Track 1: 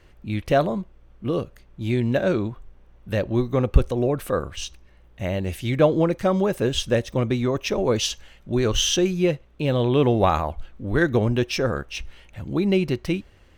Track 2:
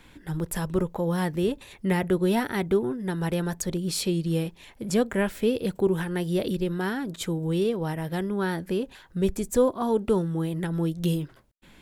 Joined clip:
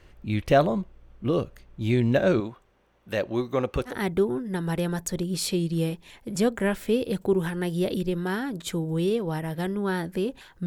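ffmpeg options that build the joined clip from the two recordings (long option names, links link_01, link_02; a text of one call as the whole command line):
ffmpeg -i cue0.wav -i cue1.wav -filter_complex "[0:a]asettb=1/sr,asplit=3[link_01][link_02][link_03];[link_01]atrim=end=2.404[link_04];[link_02]atrim=start=2.4:end=3.97,asetpts=PTS-STARTPTS,afade=type=in:duration=0.004:curve=qsin,afade=type=out:start_time=1.566:duration=0.004:curve=qsin,highpass=frequency=410:poles=1[link_05];[link_03]atrim=start=3.966[link_06];[link_04][link_05]acrossfade=duration=0.004:curve1=hsin:curve2=qsin[link_07];[link_07][link_06]acrossfade=duration=0.004:curve1=qsin:curve2=hsin,apad=whole_dur=10.66,atrim=end=10.66,atrim=end=3.97,asetpts=PTS-STARTPTS[link_08];[1:a]atrim=start=2.39:end=9.2,asetpts=PTS-STARTPTS[link_09];[link_08][link_09]acrossfade=duration=0.12:curve1=tri:curve2=tri" out.wav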